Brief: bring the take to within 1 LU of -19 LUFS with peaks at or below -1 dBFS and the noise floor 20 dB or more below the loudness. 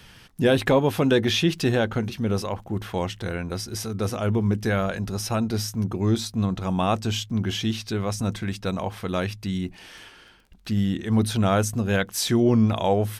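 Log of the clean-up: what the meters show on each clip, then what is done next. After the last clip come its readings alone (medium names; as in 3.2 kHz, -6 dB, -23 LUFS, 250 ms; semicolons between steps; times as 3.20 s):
tick rate 25 per s; loudness -24.5 LUFS; peak level -9.5 dBFS; loudness target -19.0 LUFS
-> de-click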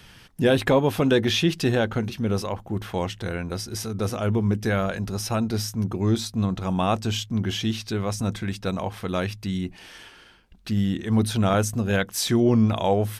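tick rate 0.076 per s; loudness -24.5 LUFS; peak level -9.0 dBFS; loudness target -19.0 LUFS
-> trim +5.5 dB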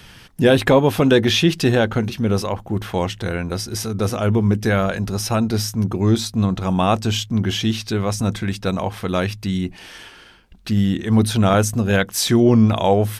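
loudness -19.0 LUFS; peak level -3.5 dBFS; noise floor -44 dBFS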